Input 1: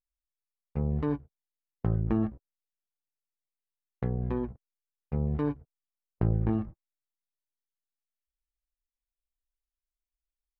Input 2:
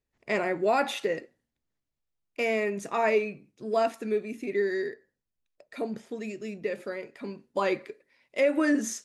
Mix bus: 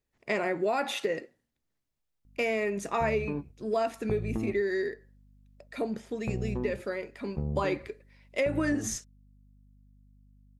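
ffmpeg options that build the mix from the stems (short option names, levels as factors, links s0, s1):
-filter_complex "[0:a]equalizer=f=2300:w=0.89:g=-11.5,acompressor=threshold=0.0398:ratio=6,aeval=exprs='val(0)+0.00126*(sin(2*PI*50*n/s)+sin(2*PI*2*50*n/s)/2+sin(2*PI*3*50*n/s)/3+sin(2*PI*4*50*n/s)/4+sin(2*PI*5*50*n/s)/5)':c=same,adelay=2250,volume=1.06[s0];[1:a]volume=1.19[s1];[s0][s1]amix=inputs=2:normalize=0,acompressor=threshold=0.0562:ratio=4"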